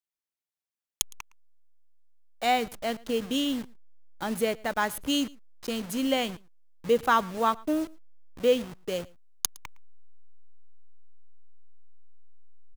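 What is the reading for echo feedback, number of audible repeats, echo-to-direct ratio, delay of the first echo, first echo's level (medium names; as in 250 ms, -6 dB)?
no regular repeats, 1, -24.0 dB, 112 ms, -24.0 dB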